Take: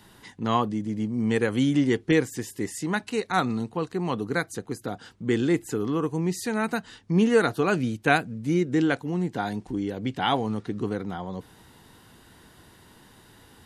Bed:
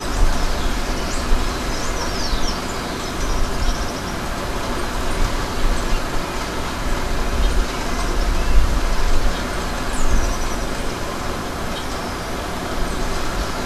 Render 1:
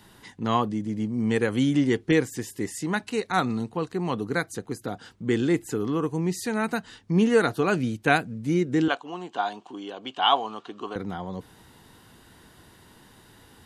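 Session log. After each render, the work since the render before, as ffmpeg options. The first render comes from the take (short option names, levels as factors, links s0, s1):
-filter_complex "[0:a]asettb=1/sr,asplit=3[s0][s1][s2];[s0]atrim=end=8.884[s3];[s1]atrim=start=8.88:end=10.96,asetpts=PTS-STARTPTS,afade=t=in:d=0.004:c=qsin,afade=t=out:st=2.076:d=0.004:c=qsin,highpass=470,equalizer=f=500:t=q:w=4:g=-4,equalizer=f=710:t=q:w=4:g=5,equalizer=f=1100:t=q:w=4:g=9,equalizer=f=2000:t=q:w=4:g=-9,equalizer=f=3000:t=q:w=4:g=10,equalizer=f=5300:t=q:w=4:g=-5,lowpass=f=7500:w=0.5412,lowpass=f=7500:w=1.3066[s4];[s2]atrim=start=10.956[s5];[s3][s4]acrossfade=d=0.004:c1=hsin:c2=qsin[s6];[s6][s5]acrossfade=d=0.004:c1=qsin:c2=hsin"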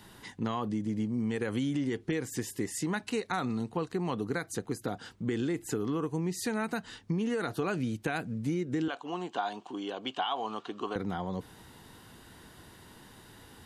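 -af "alimiter=limit=0.158:level=0:latency=1:release=53,acompressor=threshold=0.0398:ratio=6"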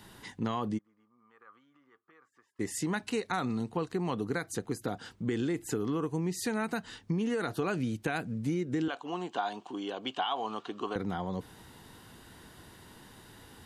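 -filter_complex "[0:a]asplit=3[s0][s1][s2];[s0]afade=t=out:st=0.77:d=0.02[s3];[s1]bandpass=f=1200:t=q:w=15,afade=t=in:st=0.77:d=0.02,afade=t=out:st=2.59:d=0.02[s4];[s2]afade=t=in:st=2.59:d=0.02[s5];[s3][s4][s5]amix=inputs=3:normalize=0"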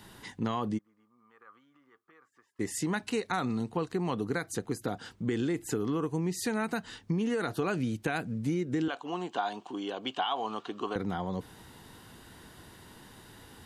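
-af "volume=1.12"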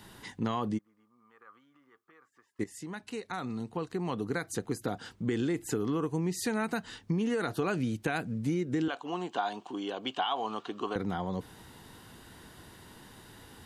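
-filter_complex "[0:a]asplit=2[s0][s1];[s0]atrim=end=2.64,asetpts=PTS-STARTPTS,afade=t=out:st=2.636:d=0.004:c=hsin:silence=0.223872[s2];[s1]atrim=start=2.64,asetpts=PTS-STARTPTS,afade=t=in:d=1.97:silence=0.223872[s3];[s2][s3]concat=n=2:v=0:a=1"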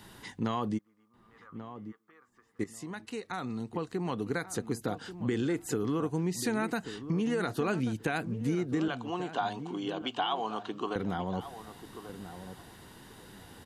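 -filter_complex "[0:a]asplit=2[s0][s1];[s1]adelay=1137,lowpass=f=1200:p=1,volume=0.282,asplit=2[s2][s3];[s3]adelay=1137,lowpass=f=1200:p=1,volume=0.22,asplit=2[s4][s5];[s5]adelay=1137,lowpass=f=1200:p=1,volume=0.22[s6];[s0][s2][s4][s6]amix=inputs=4:normalize=0"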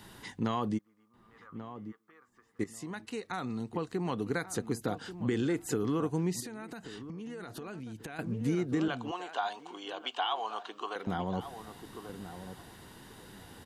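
-filter_complex "[0:a]asettb=1/sr,asplit=3[s0][s1][s2];[s0]atrim=end=6.404[s3];[s1]atrim=start=6.4:end=8.19,asetpts=PTS-STARTPTS,afade=t=in:d=0.004:c=qsin,afade=t=out:st=1.786:d=0.004:c=qsin,acompressor=threshold=0.0112:ratio=8:attack=3.2:release=140:knee=1:detection=peak[s4];[s2]atrim=start=8.186[s5];[s3][s4]acrossfade=d=0.004:c1=hsin:c2=qsin[s6];[s6][s5]acrossfade=d=0.004:c1=qsin:c2=hsin,asettb=1/sr,asplit=3[s7][s8][s9];[s7]atrim=end=9.114[s10];[s8]atrim=start=9.11:end=11.07,asetpts=PTS-STARTPTS,afade=t=in:d=0.004:c=qsin,afade=t=out:st=1.956:d=0.004:c=qsin,highpass=600[s11];[s9]atrim=start=11.066[s12];[s10][s11]acrossfade=d=0.004:c1=hsin:c2=qsin[s13];[s13][s12]acrossfade=d=0.004:c1=qsin:c2=hsin"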